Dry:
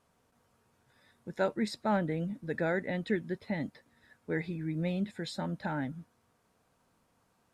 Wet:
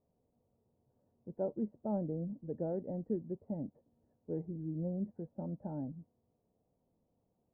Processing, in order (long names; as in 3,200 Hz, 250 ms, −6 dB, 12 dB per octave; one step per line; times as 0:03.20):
inverse Chebyshev low-pass filter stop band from 3,000 Hz, stop band 70 dB
level −4.5 dB